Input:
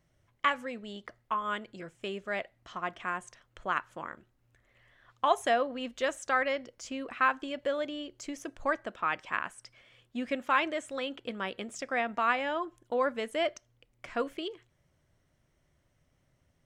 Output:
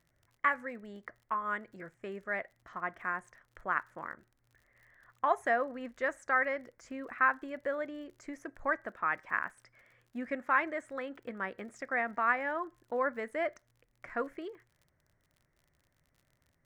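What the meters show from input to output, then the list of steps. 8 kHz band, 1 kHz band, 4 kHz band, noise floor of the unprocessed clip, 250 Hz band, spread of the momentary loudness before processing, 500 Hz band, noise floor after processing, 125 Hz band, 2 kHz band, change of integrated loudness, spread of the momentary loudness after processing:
under -10 dB, -2.0 dB, -17.0 dB, -72 dBFS, -4.0 dB, 13 LU, -3.5 dB, -75 dBFS, n/a, +0.5 dB, -1.5 dB, 16 LU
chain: resonant high shelf 2400 Hz -8 dB, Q 3; crackle 49/s -49 dBFS; gain -4 dB

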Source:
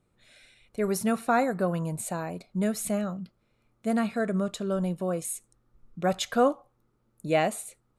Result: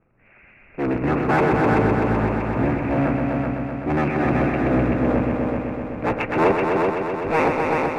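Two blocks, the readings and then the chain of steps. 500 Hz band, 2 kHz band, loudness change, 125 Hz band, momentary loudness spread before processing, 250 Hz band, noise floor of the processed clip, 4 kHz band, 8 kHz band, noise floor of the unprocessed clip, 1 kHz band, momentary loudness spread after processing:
+7.5 dB, +11.0 dB, +7.5 dB, +11.0 dB, 12 LU, +8.5 dB, -51 dBFS, n/a, under -15 dB, -72 dBFS, +9.0 dB, 7 LU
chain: cycle switcher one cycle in 3, inverted; Chebyshev low-pass 2700 Hz, order 8; in parallel at -4 dB: hard clip -29.5 dBFS, distortion -6 dB; on the sum: transient shaper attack -4 dB, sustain +7 dB; multi-head echo 0.127 s, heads all three, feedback 64%, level -6.5 dB; gain +3 dB

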